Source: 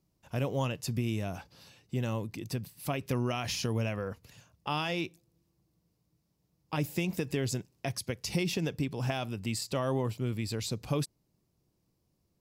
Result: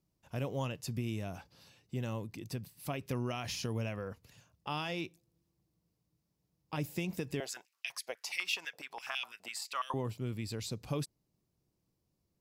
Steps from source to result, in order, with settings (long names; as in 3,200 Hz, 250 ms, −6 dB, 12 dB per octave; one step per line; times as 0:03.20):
0:07.40–0:09.94: high-pass on a step sequencer 12 Hz 680–2,700 Hz
level −5 dB